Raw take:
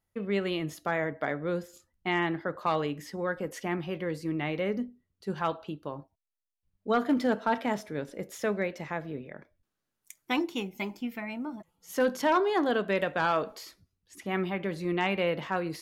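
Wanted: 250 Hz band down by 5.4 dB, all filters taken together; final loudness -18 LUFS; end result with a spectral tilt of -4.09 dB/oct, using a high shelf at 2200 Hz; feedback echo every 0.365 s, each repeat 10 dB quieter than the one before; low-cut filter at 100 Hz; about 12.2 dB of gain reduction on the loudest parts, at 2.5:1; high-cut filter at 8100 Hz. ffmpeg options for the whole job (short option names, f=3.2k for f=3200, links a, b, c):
-af "highpass=100,lowpass=8.1k,equalizer=f=250:t=o:g=-7.5,highshelf=f=2.2k:g=3,acompressor=threshold=-41dB:ratio=2.5,aecho=1:1:365|730|1095|1460:0.316|0.101|0.0324|0.0104,volume=23.5dB"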